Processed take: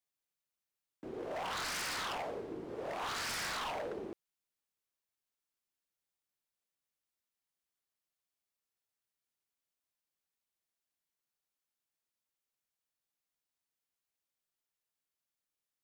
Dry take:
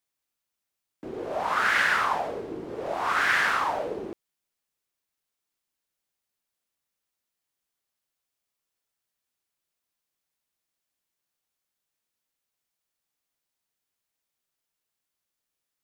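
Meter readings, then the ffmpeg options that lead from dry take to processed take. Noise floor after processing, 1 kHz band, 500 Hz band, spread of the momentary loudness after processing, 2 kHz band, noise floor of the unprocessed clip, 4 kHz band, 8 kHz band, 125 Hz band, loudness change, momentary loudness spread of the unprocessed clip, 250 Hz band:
under -85 dBFS, -14.0 dB, -9.0 dB, 11 LU, -17.0 dB, -85 dBFS, -5.5 dB, -1.0 dB, -6.5 dB, -13.5 dB, 15 LU, -8.0 dB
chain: -af "aeval=exprs='0.0501*(abs(mod(val(0)/0.0501+3,4)-2)-1)':c=same,volume=0.422"

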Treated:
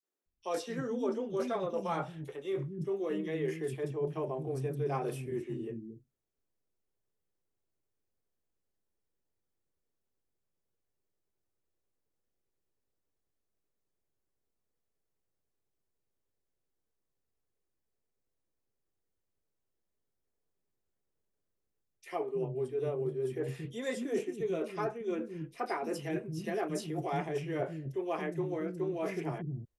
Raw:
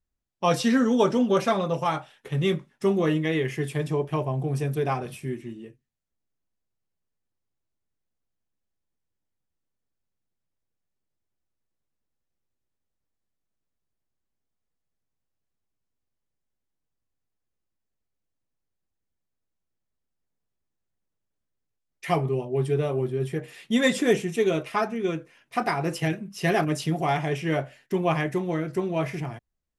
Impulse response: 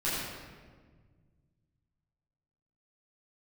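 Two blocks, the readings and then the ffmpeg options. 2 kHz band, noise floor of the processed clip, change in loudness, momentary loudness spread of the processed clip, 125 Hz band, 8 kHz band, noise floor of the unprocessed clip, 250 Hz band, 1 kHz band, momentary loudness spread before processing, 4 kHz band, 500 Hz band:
-13.5 dB, -84 dBFS, -10.0 dB, 4 LU, -11.0 dB, -11.5 dB, -81 dBFS, -11.0 dB, -11.0 dB, 11 LU, -15.5 dB, -8.0 dB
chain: -filter_complex "[0:a]equalizer=f=400:t=o:w=1:g=9.5,areverse,acompressor=threshold=0.0398:ratio=6,areverse,acrossover=split=270|3300[s0][s1][s2];[s1]adelay=30[s3];[s0]adelay=260[s4];[s4][s3][s2]amix=inputs=3:normalize=0,volume=0.75"

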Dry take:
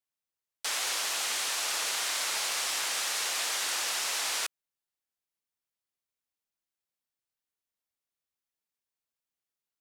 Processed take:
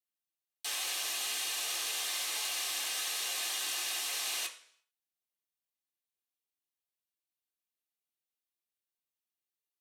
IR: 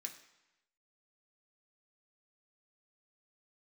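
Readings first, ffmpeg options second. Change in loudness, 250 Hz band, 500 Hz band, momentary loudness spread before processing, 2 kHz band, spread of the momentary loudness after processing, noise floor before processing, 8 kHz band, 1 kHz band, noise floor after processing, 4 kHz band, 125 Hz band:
-4.0 dB, -4.5 dB, -7.0 dB, 2 LU, -5.5 dB, 2 LU, under -85 dBFS, -4.0 dB, -8.0 dB, under -85 dBFS, -3.5 dB, no reading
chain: -filter_complex "[0:a]bandreject=f=1400:w=17[s0];[1:a]atrim=start_sample=2205,asetrate=70560,aresample=44100[s1];[s0][s1]afir=irnorm=-1:irlink=0,volume=1.58"

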